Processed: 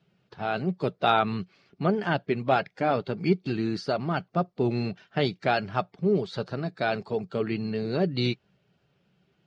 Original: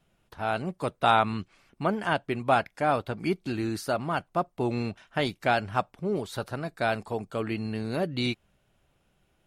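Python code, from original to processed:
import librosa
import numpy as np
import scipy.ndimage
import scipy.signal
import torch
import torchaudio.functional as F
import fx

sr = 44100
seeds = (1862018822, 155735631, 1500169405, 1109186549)

y = fx.spec_quant(x, sr, step_db=15)
y = fx.cabinet(y, sr, low_hz=110.0, low_slope=12, high_hz=5600.0, hz=(130.0, 180.0, 410.0, 1000.0, 4500.0), db=(5, 8, 7, -4, 5))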